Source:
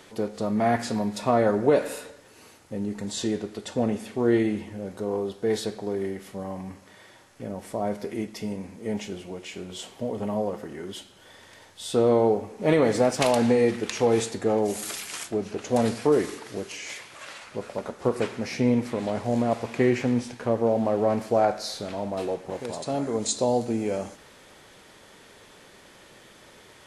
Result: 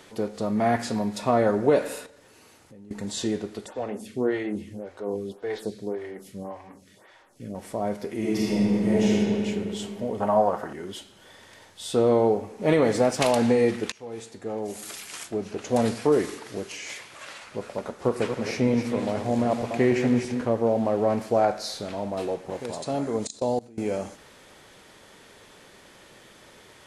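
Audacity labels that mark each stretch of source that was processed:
2.060000	2.910000	downward compressor 3 to 1, threshold −50 dBFS
3.660000	7.550000	phaser with staggered stages 1.8 Hz
8.180000	9.130000	thrown reverb, RT60 2.9 s, DRR −8.5 dB
10.200000	10.730000	flat-topped bell 1,000 Hz +12 dB
13.920000	15.710000	fade in, from −24 dB
18.040000	20.450000	feedback delay that plays each chunk backwards 158 ms, feedback 47%, level −7.5 dB
23.270000	23.780000	output level in coarse steps of 24 dB

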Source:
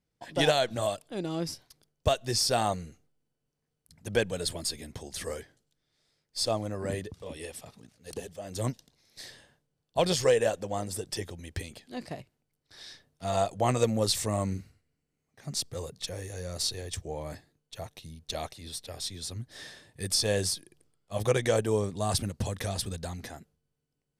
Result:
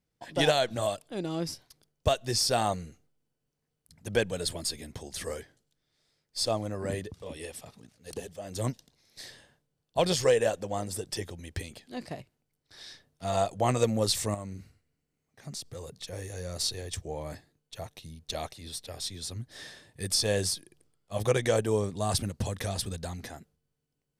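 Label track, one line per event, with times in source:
14.340000	16.130000	downward compressor 3 to 1, threshold −37 dBFS

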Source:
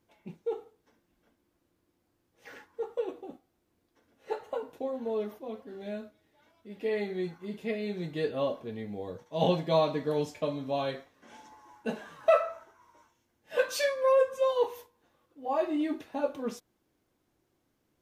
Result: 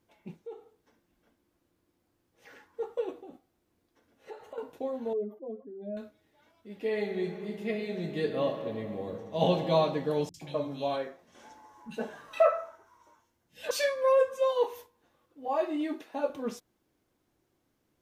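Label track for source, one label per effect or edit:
0.420000	2.660000	downward compressor 1.5 to 1, threshold −57 dBFS
3.190000	4.580000	downward compressor 2.5 to 1, threshold −44 dBFS
5.130000	5.970000	expanding power law on the bin magnitudes exponent 2
6.870000	9.680000	thrown reverb, RT60 2.8 s, DRR 6 dB
10.290000	13.710000	three-band delay without the direct sound lows, highs, mids 50/120 ms, splits 190/2,400 Hz
14.310000	14.730000	high-pass filter 190 Hz
15.480000	16.300000	high-pass filter 270 Hz

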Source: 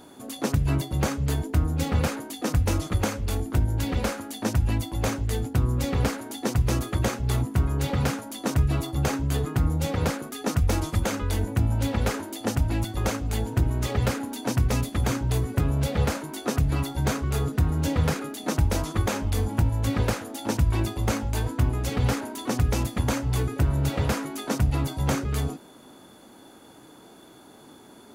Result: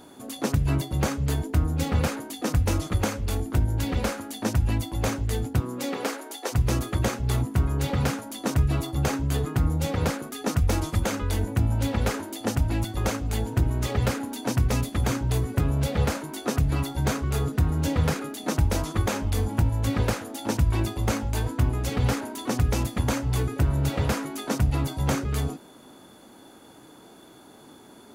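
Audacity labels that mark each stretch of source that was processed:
5.590000	6.520000	high-pass filter 170 Hz → 440 Hz 24 dB per octave

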